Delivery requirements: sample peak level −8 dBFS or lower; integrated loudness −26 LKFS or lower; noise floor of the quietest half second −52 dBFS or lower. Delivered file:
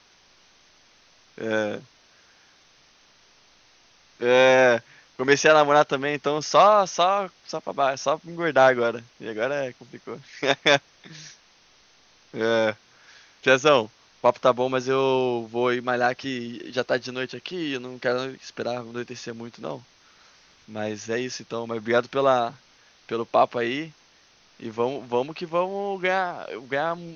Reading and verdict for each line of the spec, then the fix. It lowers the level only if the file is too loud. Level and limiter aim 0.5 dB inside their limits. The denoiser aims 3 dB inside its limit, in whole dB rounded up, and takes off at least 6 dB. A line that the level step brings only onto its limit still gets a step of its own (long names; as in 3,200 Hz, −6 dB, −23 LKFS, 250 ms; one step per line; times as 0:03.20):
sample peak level −2.5 dBFS: out of spec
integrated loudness −23.5 LKFS: out of spec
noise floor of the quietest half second −58 dBFS: in spec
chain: level −3 dB
brickwall limiter −8.5 dBFS